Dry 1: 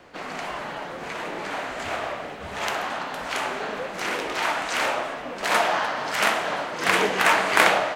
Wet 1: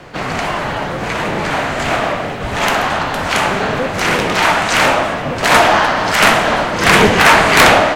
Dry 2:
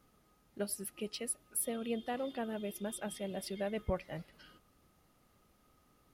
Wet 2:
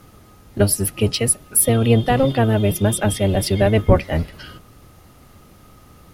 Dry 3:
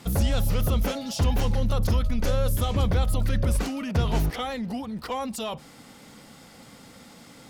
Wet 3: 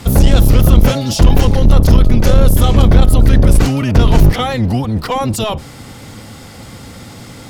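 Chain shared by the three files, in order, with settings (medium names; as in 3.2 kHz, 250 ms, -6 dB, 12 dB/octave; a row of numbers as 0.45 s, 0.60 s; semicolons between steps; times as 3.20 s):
octave divider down 1 oct, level +3 dB; sine folder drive 9 dB, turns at -1.5 dBFS; peak normalisation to -1.5 dBFS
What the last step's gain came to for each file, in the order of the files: -0.5 dB, +7.0 dB, 0.0 dB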